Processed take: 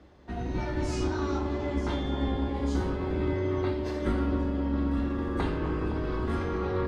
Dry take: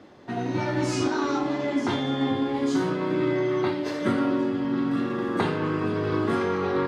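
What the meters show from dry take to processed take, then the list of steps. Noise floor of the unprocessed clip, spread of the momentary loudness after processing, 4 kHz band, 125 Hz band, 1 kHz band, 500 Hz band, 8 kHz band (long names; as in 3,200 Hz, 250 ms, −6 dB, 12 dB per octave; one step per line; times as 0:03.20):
−31 dBFS, 3 LU, −7.5 dB, +1.0 dB, −6.5 dB, −5.5 dB, can't be measured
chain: sub-octave generator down 2 octaves, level +4 dB
delay with a band-pass on its return 259 ms, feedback 72%, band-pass 520 Hz, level −6.5 dB
level −7.5 dB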